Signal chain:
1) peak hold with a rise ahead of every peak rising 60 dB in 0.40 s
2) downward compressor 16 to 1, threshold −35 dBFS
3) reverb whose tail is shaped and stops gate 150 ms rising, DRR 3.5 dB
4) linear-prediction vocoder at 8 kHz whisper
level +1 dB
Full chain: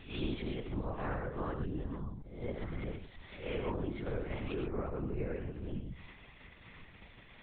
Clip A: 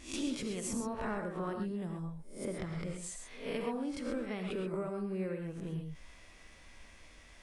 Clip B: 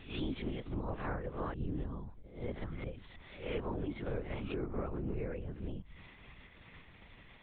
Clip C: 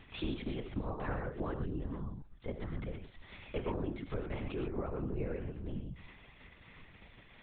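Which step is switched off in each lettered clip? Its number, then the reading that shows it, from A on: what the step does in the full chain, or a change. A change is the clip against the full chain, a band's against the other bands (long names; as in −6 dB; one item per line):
4, 125 Hz band −3.5 dB
3, change in crest factor −2.0 dB
1, change in momentary loudness spread +1 LU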